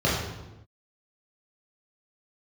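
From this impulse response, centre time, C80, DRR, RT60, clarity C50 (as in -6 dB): 66 ms, 3.5 dB, -8.5 dB, not exponential, 1.0 dB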